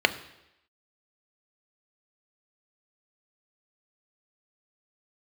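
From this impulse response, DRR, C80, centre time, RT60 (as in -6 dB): 9.5 dB, 17.5 dB, 6 ms, 0.85 s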